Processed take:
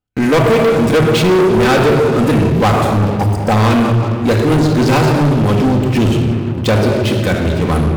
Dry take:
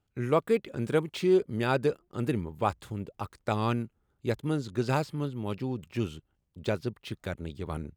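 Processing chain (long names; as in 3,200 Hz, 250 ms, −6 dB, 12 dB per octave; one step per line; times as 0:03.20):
time-frequency box erased 0:03.14–0:03.51, 1,000–4,600 Hz
rectangular room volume 2,300 cubic metres, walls mixed, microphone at 2 metres
leveller curve on the samples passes 5
level +2.5 dB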